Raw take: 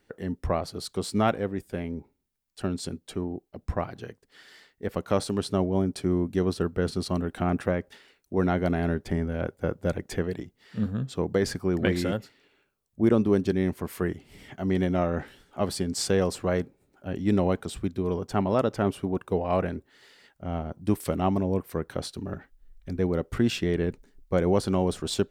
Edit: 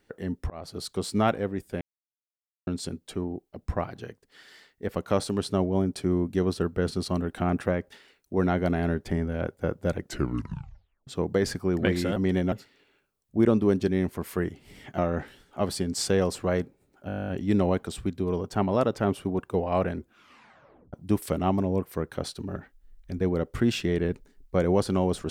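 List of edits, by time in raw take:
0.50–0.78 s: fade in
1.81–2.67 s: mute
9.99 s: tape stop 1.08 s
14.62–14.98 s: move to 12.16 s
17.07 s: stutter 0.02 s, 12 plays
19.75 s: tape stop 0.96 s

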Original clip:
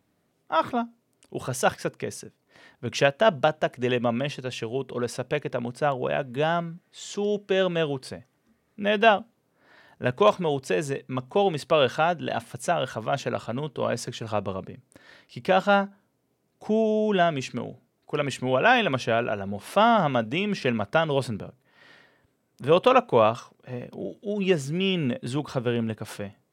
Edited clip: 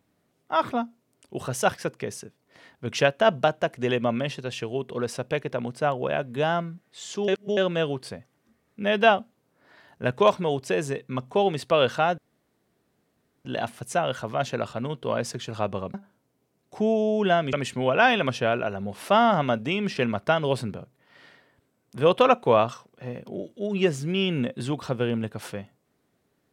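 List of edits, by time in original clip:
7.28–7.57 s: reverse
12.18 s: insert room tone 1.27 s
14.67–15.83 s: delete
17.42–18.19 s: delete

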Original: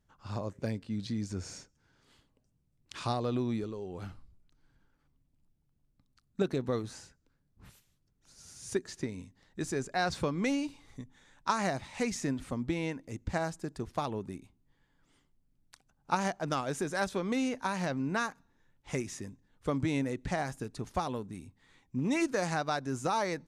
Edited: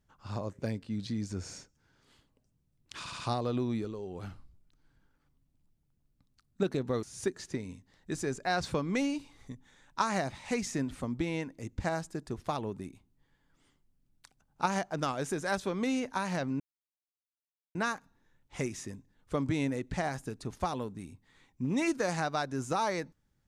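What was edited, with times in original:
2.99 s: stutter 0.07 s, 4 plays
6.82–8.52 s: delete
18.09 s: insert silence 1.15 s

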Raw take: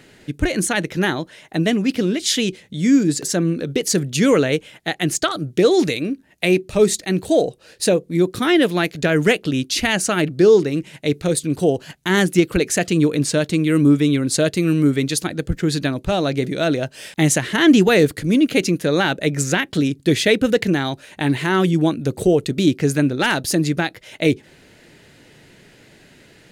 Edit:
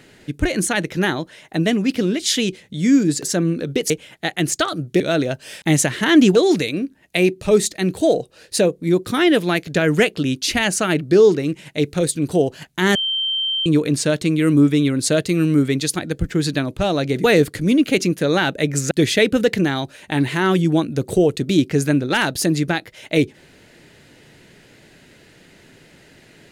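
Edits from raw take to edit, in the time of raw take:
3.90–4.53 s: delete
12.23–12.94 s: bleep 3.13 kHz -18.5 dBFS
16.52–17.87 s: move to 5.63 s
19.54–20.00 s: delete

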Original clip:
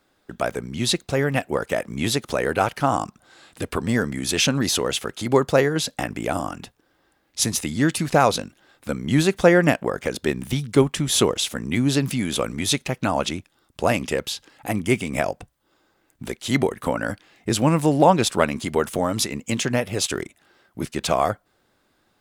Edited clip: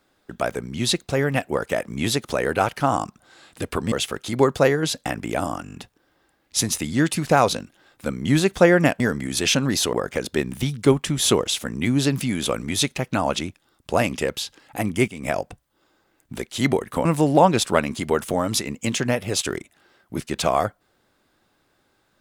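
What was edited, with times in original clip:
3.92–4.85 s: move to 9.83 s
6.57 s: stutter 0.02 s, 6 plays
14.98–15.27 s: fade in, from -13 dB
16.95–17.70 s: delete

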